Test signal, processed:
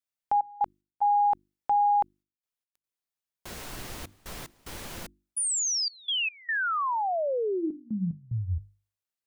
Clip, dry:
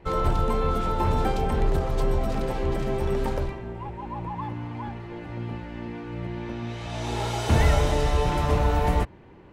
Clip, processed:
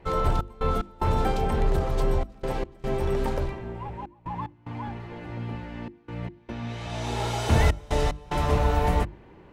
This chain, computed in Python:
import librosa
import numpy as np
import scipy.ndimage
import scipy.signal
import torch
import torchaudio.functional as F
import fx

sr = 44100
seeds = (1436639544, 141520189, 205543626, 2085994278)

y = fx.step_gate(x, sr, bpm=74, pattern='xx.x.xxxx', floor_db=-24.0, edge_ms=4.5)
y = fx.hum_notches(y, sr, base_hz=50, count=7)